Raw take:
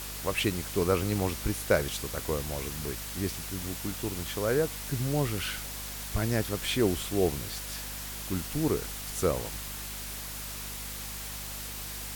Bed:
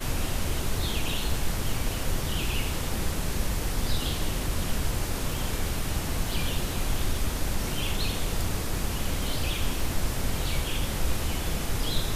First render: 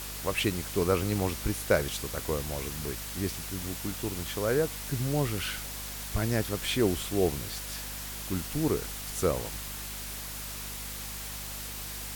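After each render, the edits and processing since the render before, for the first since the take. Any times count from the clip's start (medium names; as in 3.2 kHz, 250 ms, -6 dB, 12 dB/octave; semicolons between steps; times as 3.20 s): no audible change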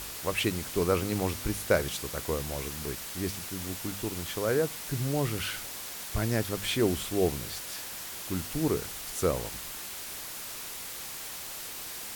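de-hum 50 Hz, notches 5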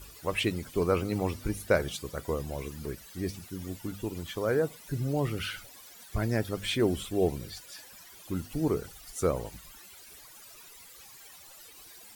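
noise reduction 16 dB, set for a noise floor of -40 dBFS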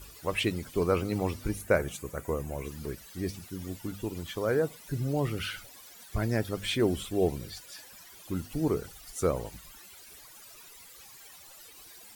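1.61–2.65 s: high-order bell 4.1 kHz -9 dB 1 oct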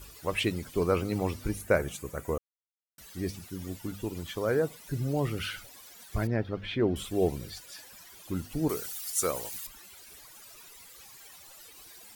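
2.38–2.98 s: mute; 6.27–6.96 s: distance through air 300 m; 8.69–9.67 s: tilt EQ +3.5 dB/octave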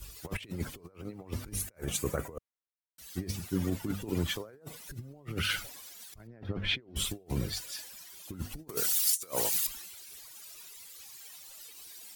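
compressor with a negative ratio -36 dBFS, ratio -0.5; three bands expanded up and down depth 70%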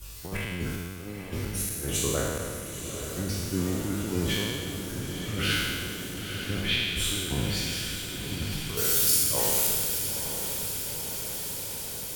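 spectral sustain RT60 1.80 s; on a send: echo that smears into a reverb 920 ms, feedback 73%, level -8 dB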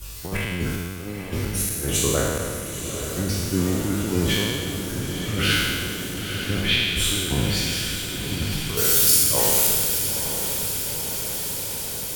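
trim +6 dB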